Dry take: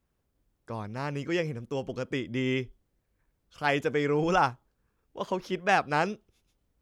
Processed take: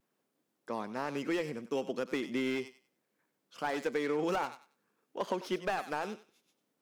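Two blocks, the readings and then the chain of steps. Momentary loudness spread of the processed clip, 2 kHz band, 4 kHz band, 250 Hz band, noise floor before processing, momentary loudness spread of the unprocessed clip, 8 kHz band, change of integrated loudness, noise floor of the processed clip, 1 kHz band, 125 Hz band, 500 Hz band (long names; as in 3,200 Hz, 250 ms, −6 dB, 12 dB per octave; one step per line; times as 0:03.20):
9 LU, −8.0 dB, −5.5 dB, −4.0 dB, −77 dBFS, 13 LU, −3.5 dB, −6.0 dB, −82 dBFS, −8.0 dB, −14.0 dB, −4.5 dB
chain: stylus tracing distortion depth 0.33 ms
high-pass filter 200 Hz 24 dB per octave
downward compressor 12 to 1, threshold −29 dBFS, peak gain reduction 12.5 dB
feedback echo with a high-pass in the loop 95 ms, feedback 25%, high-pass 780 Hz, level −13 dB
pitch vibrato 0.52 Hz 20 cents
slew-rate limiting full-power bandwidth 47 Hz
level +1 dB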